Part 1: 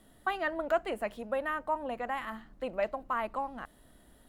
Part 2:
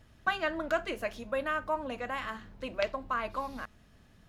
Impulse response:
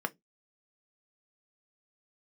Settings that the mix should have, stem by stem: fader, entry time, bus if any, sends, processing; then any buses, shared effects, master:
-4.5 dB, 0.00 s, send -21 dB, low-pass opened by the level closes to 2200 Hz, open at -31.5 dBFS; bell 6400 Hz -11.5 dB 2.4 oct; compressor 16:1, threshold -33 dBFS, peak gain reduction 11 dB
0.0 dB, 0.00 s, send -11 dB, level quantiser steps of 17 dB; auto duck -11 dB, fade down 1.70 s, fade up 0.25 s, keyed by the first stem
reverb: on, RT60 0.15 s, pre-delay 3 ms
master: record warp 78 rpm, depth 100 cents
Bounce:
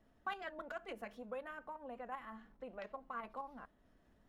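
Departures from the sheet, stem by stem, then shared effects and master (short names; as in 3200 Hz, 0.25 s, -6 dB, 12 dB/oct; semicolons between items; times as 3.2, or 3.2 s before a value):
stem 1 -4.5 dB -> -11.0 dB; stem 2 0.0 dB -> -9.0 dB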